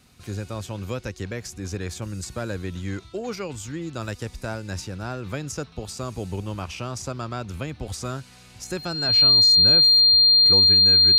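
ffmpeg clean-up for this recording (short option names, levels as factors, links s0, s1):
-af "bandreject=f=4200:w=30"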